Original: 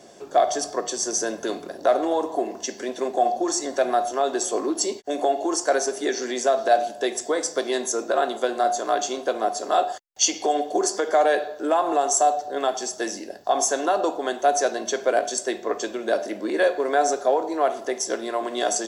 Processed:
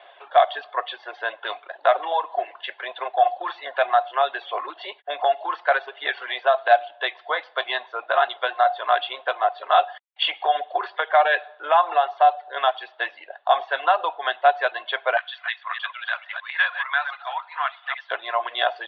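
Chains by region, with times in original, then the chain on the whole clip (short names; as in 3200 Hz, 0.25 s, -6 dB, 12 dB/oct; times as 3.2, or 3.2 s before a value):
15.17–18.11 reverse delay 0.154 s, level -6 dB + HPF 1100 Hz 24 dB/oct
whole clip: steep low-pass 3600 Hz 72 dB/oct; reverb removal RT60 0.76 s; HPF 770 Hz 24 dB/oct; gain +8 dB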